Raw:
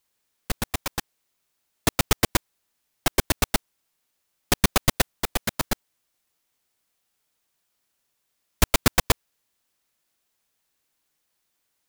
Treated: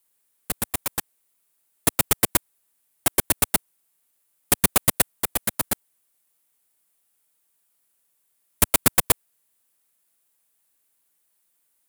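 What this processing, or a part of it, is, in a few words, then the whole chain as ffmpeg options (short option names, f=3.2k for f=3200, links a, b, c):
budget condenser microphone: -af "highpass=f=99:p=1,highshelf=f=7.4k:t=q:w=1.5:g=7.5,volume=-1dB"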